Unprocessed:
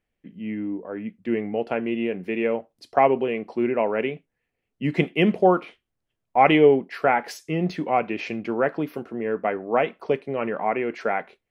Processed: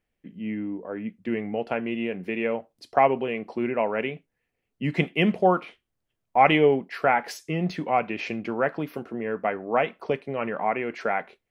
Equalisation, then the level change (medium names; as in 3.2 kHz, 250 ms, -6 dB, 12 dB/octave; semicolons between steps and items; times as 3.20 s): dynamic bell 360 Hz, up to -5 dB, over -31 dBFS, Q 1.2; 0.0 dB